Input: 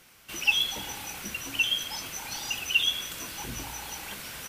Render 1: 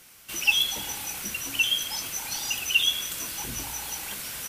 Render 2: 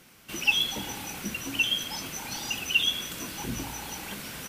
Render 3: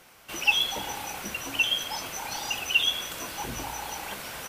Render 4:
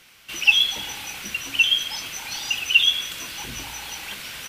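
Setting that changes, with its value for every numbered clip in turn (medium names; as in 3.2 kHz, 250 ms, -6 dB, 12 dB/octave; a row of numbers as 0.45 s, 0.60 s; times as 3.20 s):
peaking EQ, frequency: 11 kHz, 220 Hz, 710 Hz, 3 kHz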